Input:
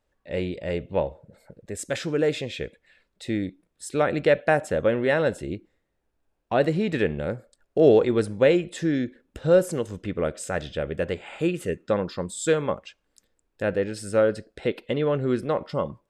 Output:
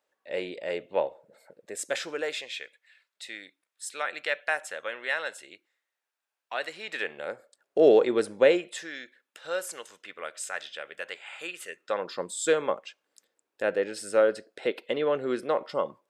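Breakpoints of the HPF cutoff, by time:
1.89 s 470 Hz
2.58 s 1300 Hz
6.76 s 1300 Hz
7.8 s 360 Hz
8.47 s 360 Hz
8.91 s 1200 Hz
11.72 s 1200 Hz
12.16 s 400 Hz

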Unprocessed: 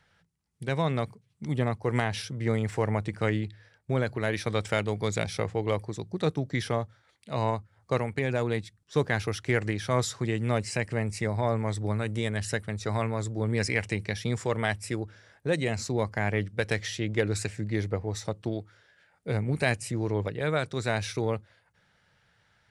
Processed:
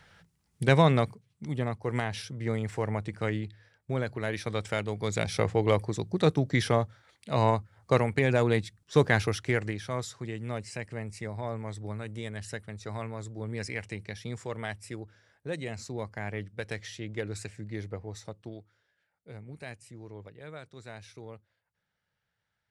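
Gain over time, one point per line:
0.72 s +8 dB
1.5 s -3.5 dB
4.97 s -3.5 dB
5.46 s +3.5 dB
9.16 s +3.5 dB
10.02 s -8 dB
18.08 s -8 dB
19.29 s -16.5 dB

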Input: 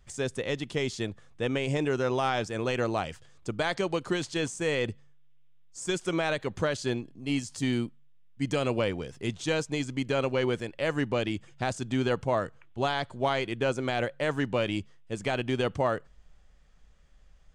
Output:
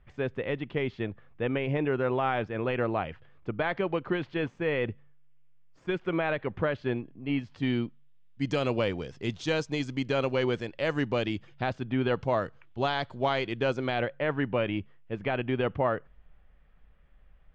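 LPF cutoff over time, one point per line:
LPF 24 dB/oct
7.33 s 2700 Hz
8.57 s 5800 Hz
11.26 s 5800 Hz
11.97 s 2700 Hz
12.25 s 5200 Hz
13.7 s 5200 Hz
14.24 s 2800 Hz

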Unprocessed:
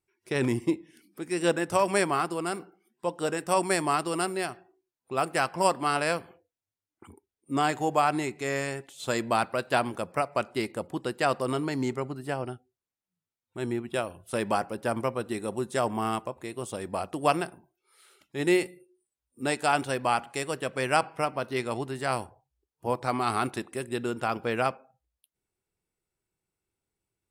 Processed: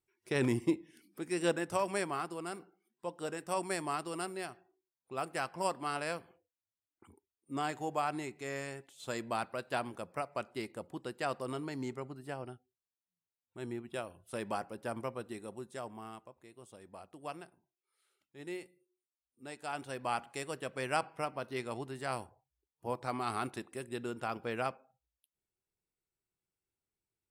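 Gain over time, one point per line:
1.21 s -4 dB
1.99 s -10 dB
15.19 s -10 dB
16.15 s -19 dB
19.46 s -19 dB
20.15 s -8.5 dB

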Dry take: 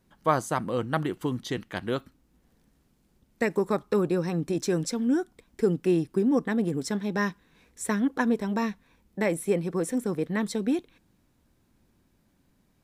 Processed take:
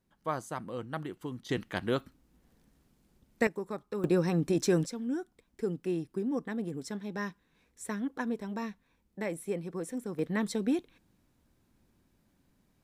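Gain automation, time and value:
-10 dB
from 1.49 s -1 dB
from 3.47 s -11.5 dB
from 4.04 s 0 dB
from 4.86 s -9 dB
from 10.19 s -3 dB

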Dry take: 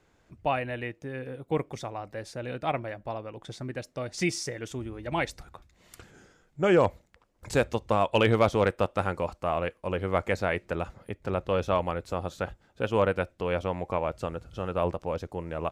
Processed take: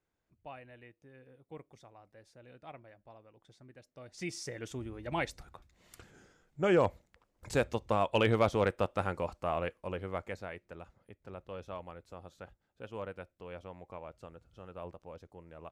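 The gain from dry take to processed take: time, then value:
3.79 s -20 dB
4.2 s -13 dB
4.57 s -5 dB
9.7 s -5 dB
10.61 s -17 dB

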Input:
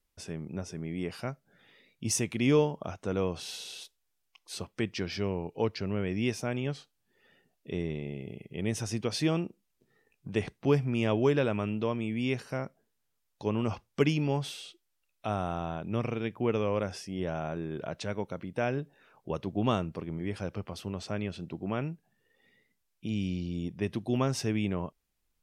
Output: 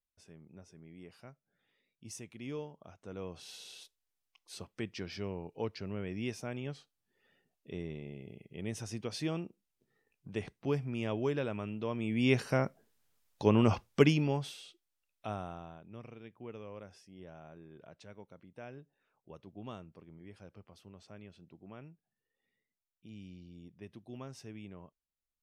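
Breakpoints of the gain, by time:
2.81 s -17 dB
3.66 s -7.5 dB
11.79 s -7.5 dB
12.36 s +4.5 dB
13.85 s +4.5 dB
14.55 s -6.5 dB
15.29 s -6.5 dB
15.88 s -17.5 dB

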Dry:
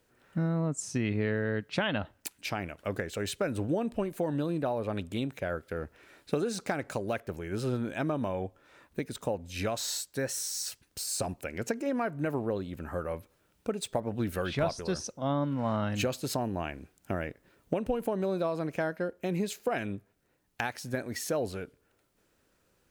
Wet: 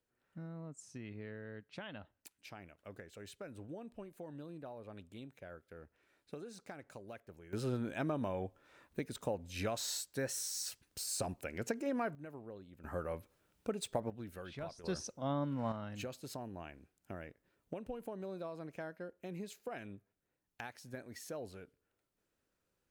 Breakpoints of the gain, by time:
-17.5 dB
from 7.53 s -5.5 dB
from 12.15 s -18 dB
from 12.84 s -5.5 dB
from 14.1 s -15.5 dB
from 14.84 s -6.5 dB
from 15.72 s -13.5 dB

